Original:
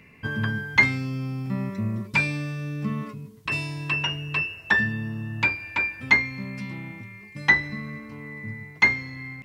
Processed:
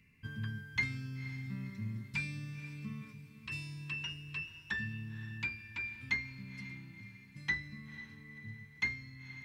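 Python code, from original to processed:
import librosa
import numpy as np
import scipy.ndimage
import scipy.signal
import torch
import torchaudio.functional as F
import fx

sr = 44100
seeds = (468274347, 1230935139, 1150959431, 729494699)

p1 = fx.tone_stack(x, sr, knobs='6-0-2')
p2 = p1 + fx.echo_diffused(p1, sr, ms=508, feedback_pct=43, wet_db=-13, dry=0)
y = p2 * librosa.db_to_amplitude(3.0)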